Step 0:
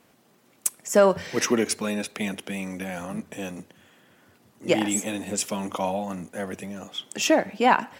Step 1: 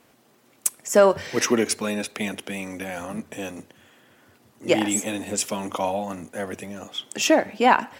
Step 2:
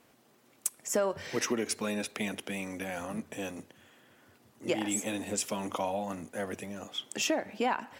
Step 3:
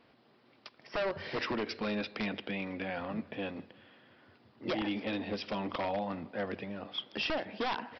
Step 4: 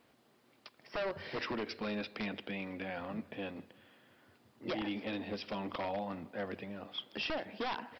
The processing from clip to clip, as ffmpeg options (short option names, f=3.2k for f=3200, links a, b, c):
-af "equalizer=f=180:t=o:w=0.21:g=-9,volume=2dB"
-af "acompressor=threshold=-23dB:ratio=3,volume=-5dB"
-af "aecho=1:1:159|318|477|636:0.0668|0.0374|0.021|0.0117,aresample=11025,aeval=exprs='0.0473*(abs(mod(val(0)/0.0473+3,4)-2)-1)':c=same,aresample=44100"
-af "acrusher=bits=11:mix=0:aa=0.000001,volume=-3.5dB"